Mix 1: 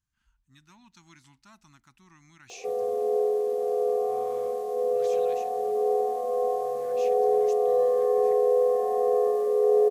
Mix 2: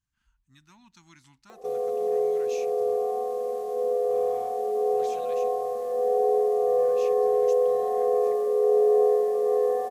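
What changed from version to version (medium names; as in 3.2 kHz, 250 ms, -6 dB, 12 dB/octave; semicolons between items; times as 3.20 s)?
background: entry -1.00 s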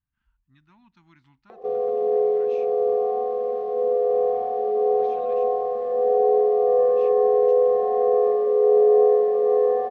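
background +5.0 dB; master: add distance through air 350 m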